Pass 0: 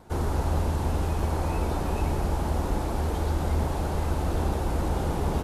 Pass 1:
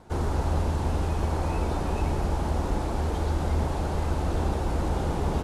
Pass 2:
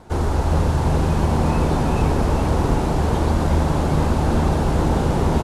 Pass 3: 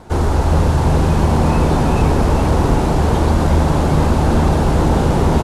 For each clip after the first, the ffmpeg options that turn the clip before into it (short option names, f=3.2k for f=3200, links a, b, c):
-af "lowpass=9.3k"
-filter_complex "[0:a]asplit=9[a][b][c][d][e][f][g][h][i];[b]adelay=396,afreqshift=77,volume=-6dB[j];[c]adelay=792,afreqshift=154,volume=-10.3dB[k];[d]adelay=1188,afreqshift=231,volume=-14.6dB[l];[e]adelay=1584,afreqshift=308,volume=-18.9dB[m];[f]adelay=1980,afreqshift=385,volume=-23.2dB[n];[g]adelay=2376,afreqshift=462,volume=-27.5dB[o];[h]adelay=2772,afreqshift=539,volume=-31.8dB[p];[i]adelay=3168,afreqshift=616,volume=-36.1dB[q];[a][j][k][l][m][n][o][p][q]amix=inputs=9:normalize=0,volume=6.5dB"
-af "acontrast=27"